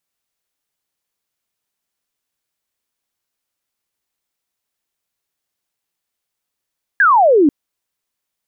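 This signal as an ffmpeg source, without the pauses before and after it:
-f lavfi -i "aevalsrc='0.422*clip(t/0.002,0,1)*clip((0.49-t)/0.002,0,1)*sin(2*PI*1700*0.49/log(270/1700)*(exp(log(270/1700)*t/0.49)-1))':d=0.49:s=44100"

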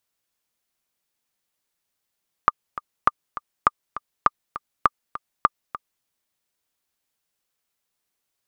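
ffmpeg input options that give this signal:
-f lavfi -i "aevalsrc='pow(10,(-1.5-15*gte(mod(t,2*60/202),60/202))/20)*sin(2*PI*1200*mod(t,60/202))*exp(-6.91*mod(t,60/202)/0.03)':d=3.56:s=44100"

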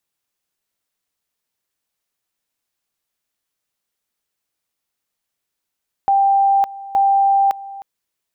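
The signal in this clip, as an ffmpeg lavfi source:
-f lavfi -i "aevalsrc='pow(10,(-11-18.5*gte(mod(t,0.87),0.56))/20)*sin(2*PI*789*t)':d=1.74:s=44100"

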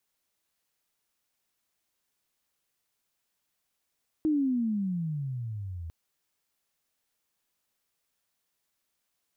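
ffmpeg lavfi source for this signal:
-f lavfi -i "aevalsrc='pow(10,(-22-13.5*t/1.65)/20)*sin(2*PI*318*1.65/(-24*log(2)/12)*(exp(-24*log(2)/12*t/1.65)-1))':d=1.65:s=44100"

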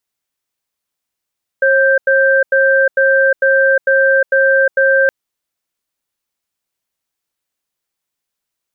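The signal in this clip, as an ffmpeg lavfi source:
-f lavfi -i "aevalsrc='0.282*(sin(2*PI*540*t)+sin(2*PI*1570*t))*clip(min(mod(t,0.45),0.36-mod(t,0.45))/0.005,0,1)':d=3.47:s=44100"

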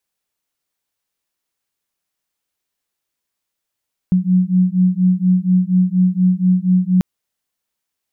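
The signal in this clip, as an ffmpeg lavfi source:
-f lavfi -i "aevalsrc='0.188*(sin(2*PI*181*t)+sin(2*PI*185.2*t))':d=2.89:s=44100"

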